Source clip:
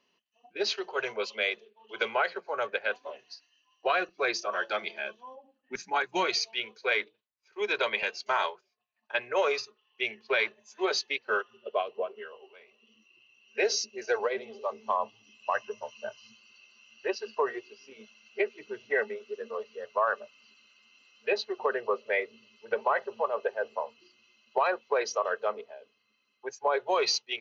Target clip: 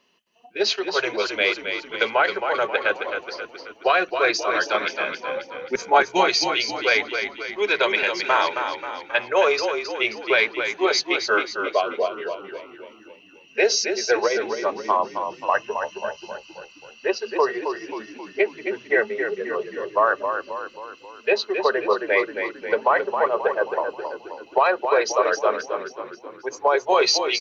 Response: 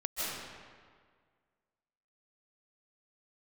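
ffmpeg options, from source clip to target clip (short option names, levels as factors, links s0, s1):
-filter_complex "[0:a]asettb=1/sr,asplit=3[s0][s1][s2];[s0]atrim=end=5.234[s3];[s1]atrim=start=5.23:end=6.01,asetpts=PTS-STARTPTS,afade=t=in:d=0.004:c=qsin,afade=t=out:st=0.776:d=0.004:c=qsin,equalizer=f=530:w=1.5:g=13[s4];[s2]atrim=start=6.006[s5];[s3][s4]acrossfade=d=0.004:c1=hsin:c2=qsin[s6];[s6][s5]acrossfade=d=0.004:c1=qsin:c2=hsin,asplit=7[s7][s8][s9][s10][s11][s12][s13];[s8]adelay=267,afreqshift=-31,volume=0.447[s14];[s9]adelay=534,afreqshift=-62,volume=0.229[s15];[s10]adelay=801,afreqshift=-93,volume=0.116[s16];[s11]adelay=1068,afreqshift=-124,volume=0.0596[s17];[s12]adelay=1335,afreqshift=-155,volume=0.0302[s18];[s13]adelay=1602,afreqshift=-186,volume=0.0155[s19];[s7][s14][s15][s16][s17][s18][s19]amix=inputs=7:normalize=0,volume=2.51"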